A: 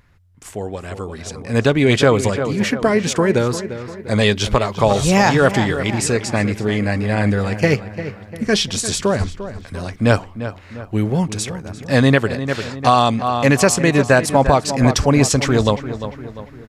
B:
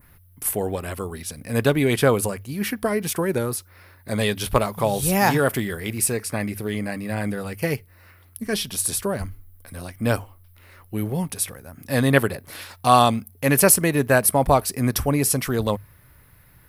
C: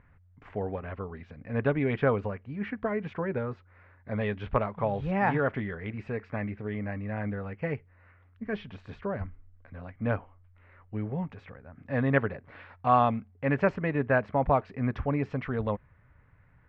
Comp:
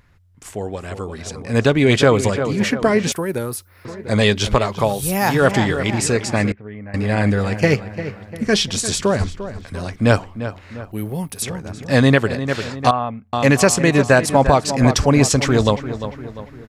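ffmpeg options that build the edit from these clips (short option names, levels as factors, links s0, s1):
-filter_complex "[1:a]asplit=3[s0][s1][s2];[2:a]asplit=2[s3][s4];[0:a]asplit=6[s5][s6][s7][s8][s9][s10];[s5]atrim=end=3.122[s11];[s0]atrim=start=3.118:end=3.852[s12];[s6]atrim=start=3.848:end=4.96[s13];[s1]atrim=start=4.72:end=5.48[s14];[s7]atrim=start=5.24:end=6.522[s15];[s3]atrim=start=6.518:end=6.942[s16];[s8]atrim=start=6.938:end=10.922[s17];[s2]atrim=start=10.918:end=11.422[s18];[s9]atrim=start=11.418:end=12.912[s19];[s4]atrim=start=12.908:end=13.332[s20];[s10]atrim=start=13.328[s21];[s11][s12]acrossfade=d=0.004:c1=hsin:c2=hsin[s22];[s22][s13]acrossfade=d=0.004:c1=hsin:c2=hsin[s23];[s23][s14]acrossfade=d=0.24:c1=tri:c2=tri[s24];[s24][s15]acrossfade=d=0.24:c1=tri:c2=tri[s25];[s25][s16]acrossfade=d=0.004:c1=hsin:c2=hsin[s26];[s26][s17]acrossfade=d=0.004:c1=hsin:c2=hsin[s27];[s27][s18]acrossfade=d=0.004:c1=hsin:c2=hsin[s28];[s28][s19]acrossfade=d=0.004:c1=hsin:c2=hsin[s29];[s29][s20]acrossfade=d=0.004:c1=hsin:c2=hsin[s30];[s30][s21]acrossfade=d=0.004:c1=hsin:c2=hsin"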